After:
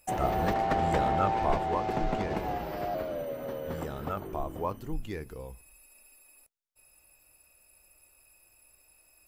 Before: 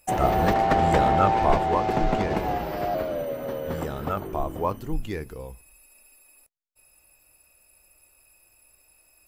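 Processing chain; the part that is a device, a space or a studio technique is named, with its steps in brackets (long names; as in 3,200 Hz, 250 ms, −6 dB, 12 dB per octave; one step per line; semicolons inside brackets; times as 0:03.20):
parallel compression (in parallel at −2 dB: downward compressor, threshold −38 dBFS, peak gain reduction 21.5 dB)
on the sum: level −7.5 dB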